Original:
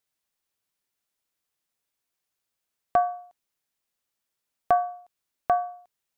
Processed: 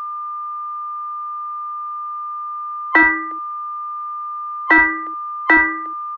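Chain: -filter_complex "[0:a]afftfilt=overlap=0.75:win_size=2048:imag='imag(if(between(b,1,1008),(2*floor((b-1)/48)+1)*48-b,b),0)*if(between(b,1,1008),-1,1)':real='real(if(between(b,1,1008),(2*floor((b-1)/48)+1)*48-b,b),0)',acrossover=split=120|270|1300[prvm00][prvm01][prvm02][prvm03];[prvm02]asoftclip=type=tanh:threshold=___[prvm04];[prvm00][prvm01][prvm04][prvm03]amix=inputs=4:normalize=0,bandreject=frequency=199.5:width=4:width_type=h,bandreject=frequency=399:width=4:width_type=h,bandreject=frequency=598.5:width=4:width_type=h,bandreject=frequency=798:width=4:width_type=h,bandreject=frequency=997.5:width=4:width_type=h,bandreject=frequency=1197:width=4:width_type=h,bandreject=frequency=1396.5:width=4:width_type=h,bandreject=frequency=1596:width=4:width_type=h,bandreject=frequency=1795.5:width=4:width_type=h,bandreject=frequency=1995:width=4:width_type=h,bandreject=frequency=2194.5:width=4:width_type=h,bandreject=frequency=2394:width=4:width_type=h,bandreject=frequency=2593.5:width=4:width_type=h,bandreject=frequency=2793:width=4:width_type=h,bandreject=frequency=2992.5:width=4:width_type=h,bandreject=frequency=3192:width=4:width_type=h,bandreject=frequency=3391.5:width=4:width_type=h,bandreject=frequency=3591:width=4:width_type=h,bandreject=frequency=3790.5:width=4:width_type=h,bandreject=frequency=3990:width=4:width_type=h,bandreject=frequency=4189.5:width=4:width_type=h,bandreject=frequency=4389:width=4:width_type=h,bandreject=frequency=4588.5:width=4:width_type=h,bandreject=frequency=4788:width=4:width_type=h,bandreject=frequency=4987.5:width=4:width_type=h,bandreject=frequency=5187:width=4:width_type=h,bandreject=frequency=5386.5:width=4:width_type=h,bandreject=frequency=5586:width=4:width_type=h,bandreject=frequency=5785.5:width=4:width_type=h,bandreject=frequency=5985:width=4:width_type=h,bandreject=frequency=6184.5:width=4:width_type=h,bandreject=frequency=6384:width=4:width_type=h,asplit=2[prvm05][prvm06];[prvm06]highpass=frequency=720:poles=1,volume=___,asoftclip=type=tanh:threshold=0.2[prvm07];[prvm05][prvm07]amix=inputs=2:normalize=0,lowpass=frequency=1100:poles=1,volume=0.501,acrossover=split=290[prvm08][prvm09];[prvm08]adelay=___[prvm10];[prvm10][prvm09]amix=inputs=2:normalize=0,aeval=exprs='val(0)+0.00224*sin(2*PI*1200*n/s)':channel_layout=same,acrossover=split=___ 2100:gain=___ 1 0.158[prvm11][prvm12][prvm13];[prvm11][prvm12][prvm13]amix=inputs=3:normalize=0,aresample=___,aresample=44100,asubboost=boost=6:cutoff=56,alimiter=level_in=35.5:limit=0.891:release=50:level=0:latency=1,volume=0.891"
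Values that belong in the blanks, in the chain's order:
0.0299, 5.62, 70, 480, 0.0794, 22050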